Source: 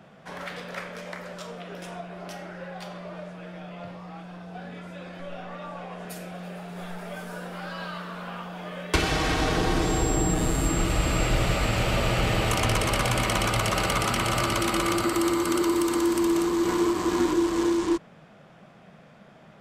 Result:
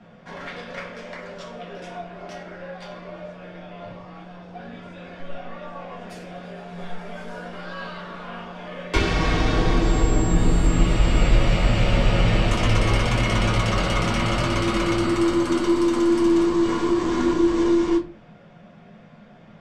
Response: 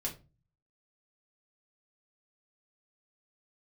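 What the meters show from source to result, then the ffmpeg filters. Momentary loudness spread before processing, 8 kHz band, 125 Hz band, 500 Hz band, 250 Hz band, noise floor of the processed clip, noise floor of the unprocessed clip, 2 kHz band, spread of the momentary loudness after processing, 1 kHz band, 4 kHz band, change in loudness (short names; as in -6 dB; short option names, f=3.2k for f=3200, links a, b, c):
16 LU, -4.5 dB, +5.5 dB, +3.0 dB, +4.5 dB, -48 dBFS, -52 dBFS, +1.0 dB, 18 LU, +0.5 dB, +0.5 dB, +4.5 dB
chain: -filter_complex "[0:a]lowpass=5.7k,aeval=exprs='0.282*(cos(1*acos(clip(val(0)/0.282,-1,1)))-cos(1*PI/2))+0.00501*(cos(8*acos(clip(val(0)/0.282,-1,1)))-cos(8*PI/2))':c=same[a];[1:a]atrim=start_sample=2205[b];[a][b]afir=irnorm=-1:irlink=0"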